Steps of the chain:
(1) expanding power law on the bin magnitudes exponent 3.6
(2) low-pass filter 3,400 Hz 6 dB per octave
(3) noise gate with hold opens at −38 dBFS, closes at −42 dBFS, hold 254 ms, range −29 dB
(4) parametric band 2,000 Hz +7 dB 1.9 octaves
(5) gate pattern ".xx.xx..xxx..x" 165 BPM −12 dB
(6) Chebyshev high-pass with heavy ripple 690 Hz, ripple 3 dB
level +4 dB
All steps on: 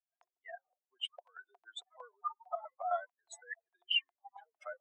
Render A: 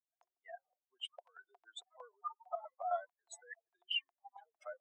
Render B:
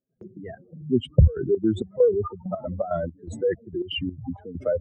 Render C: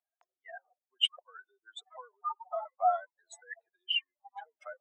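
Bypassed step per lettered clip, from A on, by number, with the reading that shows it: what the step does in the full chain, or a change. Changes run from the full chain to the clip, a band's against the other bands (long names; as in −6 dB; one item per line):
4, 2 kHz band −3.5 dB
6, 500 Hz band +21.5 dB
5, change in crest factor +2.0 dB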